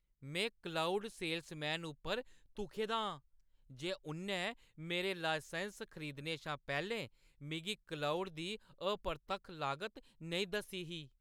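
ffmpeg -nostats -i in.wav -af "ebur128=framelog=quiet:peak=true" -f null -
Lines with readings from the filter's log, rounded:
Integrated loudness:
  I:         -40.8 LUFS
  Threshold: -51.0 LUFS
Loudness range:
  LRA:         1.7 LU
  Threshold: -61.3 LUFS
  LRA low:   -42.0 LUFS
  LRA high:  -40.4 LUFS
True peak:
  Peak:      -22.7 dBFS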